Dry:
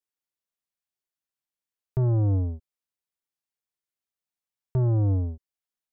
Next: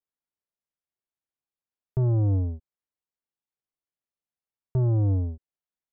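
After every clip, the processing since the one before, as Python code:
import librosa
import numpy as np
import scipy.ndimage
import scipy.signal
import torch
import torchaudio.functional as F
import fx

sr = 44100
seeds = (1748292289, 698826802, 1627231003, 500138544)

y = fx.lowpass(x, sr, hz=1100.0, slope=6)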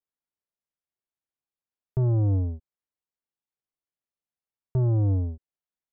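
y = x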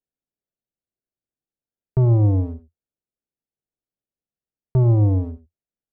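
y = fx.wiener(x, sr, points=41)
y = fx.peak_eq(y, sr, hz=86.0, db=-8.0, octaves=0.23)
y = y + 10.0 ** (-15.0 / 20.0) * np.pad(y, (int(84 * sr / 1000.0), 0))[:len(y)]
y = y * 10.0 ** (7.5 / 20.0)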